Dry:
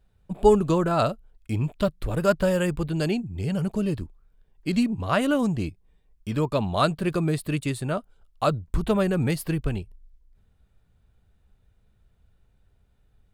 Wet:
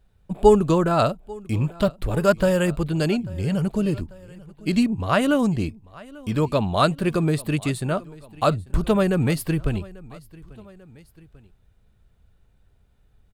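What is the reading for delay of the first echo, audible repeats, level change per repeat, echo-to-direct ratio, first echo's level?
842 ms, 2, −4.5 dB, −20.5 dB, −22.0 dB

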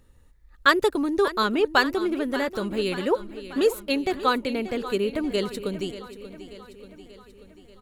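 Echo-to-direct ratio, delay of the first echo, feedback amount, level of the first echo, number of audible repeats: −12.0 dB, 585 ms, 58%, −14.0 dB, 5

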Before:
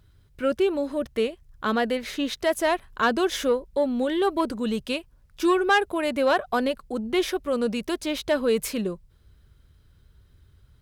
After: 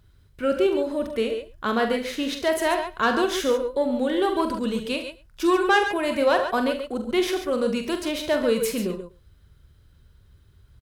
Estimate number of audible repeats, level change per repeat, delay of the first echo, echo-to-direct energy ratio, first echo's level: 4, repeats not evenly spaced, 44 ms, −4.5 dB, −8.0 dB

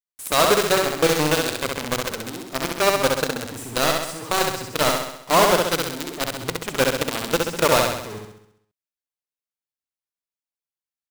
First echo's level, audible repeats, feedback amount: −3.0 dB, 7, 55%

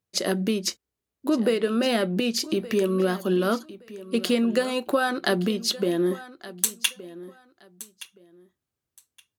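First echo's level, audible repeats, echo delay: −17.0 dB, 2, 1,170 ms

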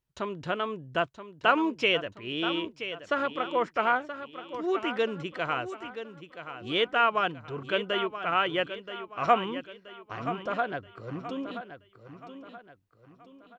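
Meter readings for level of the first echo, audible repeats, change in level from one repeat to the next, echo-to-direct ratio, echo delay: −11.0 dB, 4, −8.0 dB, −10.0 dB, 977 ms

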